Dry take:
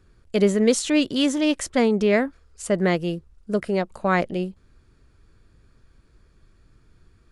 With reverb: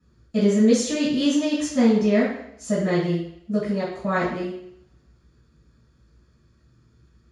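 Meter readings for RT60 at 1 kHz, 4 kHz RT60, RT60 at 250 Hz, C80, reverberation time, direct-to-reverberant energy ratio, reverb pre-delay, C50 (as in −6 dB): 0.70 s, 0.70 s, 0.70 s, 6.0 dB, 0.75 s, −11.0 dB, 3 ms, 2.5 dB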